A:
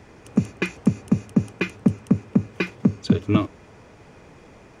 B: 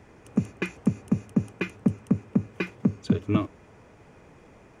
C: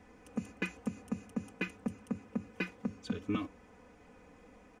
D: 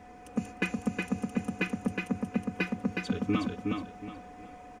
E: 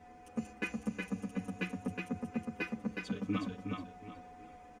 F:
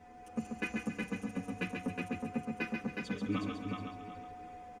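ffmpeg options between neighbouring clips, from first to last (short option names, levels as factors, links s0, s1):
-af "equalizer=f=4400:t=o:w=1:g=-5,volume=0.596"
-filter_complex "[0:a]aecho=1:1:4:0.82,acrossover=split=1200[s0][s1];[s0]alimiter=limit=0.141:level=0:latency=1:release=116[s2];[s2][s1]amix=inputs=2:normalize=0,volume=0.422"
-af "aeval=exprs='val(0)+0.00158*sin(2*PI*730*n/s)':c=same,aecho=1:1:366|732|1098|1464:0.668|0.194|0.0562|0.0163,volume=1.88"
-filter_complex "[0:a]asplit=2[s0][s1];[s1]adelay=9.2,afreqshift=-0.47[s2];[s0][s2]amix=inputs=2:normalize=1,volume=0.668"
-af "aecho=1:1:137|274|411|548:0.562|0.202|0.0729|0.0262"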